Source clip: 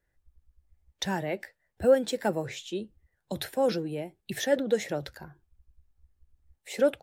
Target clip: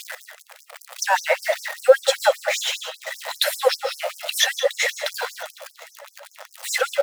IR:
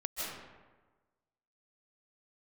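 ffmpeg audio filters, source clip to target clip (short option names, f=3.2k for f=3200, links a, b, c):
-filter_complex "[0:a]aeval=exprs='val(0)+0.5*0.0133*sgn(val(0))':c=same,asplit=2[a][b];[b]aecho=1:1:1.5:0.37[c];[1:a]atrim=start_sample=2205,afade=t=out:st=0.26:d=0.01,atrim=end_sample=11907,asetrate=43218,aresample=44100[d];[c][d]afir=irnorm=-1:irlink=0,volume=-6.5dB[e];[a][e]amix=inputs=2:normalize=0,aphaser=in_gain=1:out_gain=1:delay=1.7:decay=0.27:speed=0.62:type=sinusoidal,highshelf=f=4.8k:g=-5.5,bandreject=f=59.8:t=h:w=4,bandreject=f=119.6:t=h:w=4,bandreject=f=179.4:t=h:w=4,bandreject=f=239.2:t=h:w=4,bandreject=f=299:t=h:w=4,bandreject=f=358.8:t=h:w=4,bandreject=f=418.6:t=h:w=4,bandreject=f=478.4:t=h:w=4,bandreject=f=538.2:t=h:w=4,bandreject=f=598:t=h:w=4,bandreject=f=657.8:t=h:w=4,bandreject=f=717.6:t=h:w=4,bandreject=f=777.4:t=h:w=4,asplit=2[f][g];[g]acompressor=threshold=-26dB:ratio=6,volume=1dB[h];[f][h]amix=inputs=2:normalize=0,aecho=1:1:505|1010|1515|2020:0.1|0.054|0.0292|0.0157,afftfilt=real='re*gte(b*sr/1024,460*pow(5100/460,0.5+0.5*sin(2*PI*5.1*pts/sr)))':imag='im*gte(b*sr/1024,460*pow(5100/460,0.5+0.5*sin(2*PI*5.1*pts/sr)))':win_size=1024:overlap=0.75,volume=7dB"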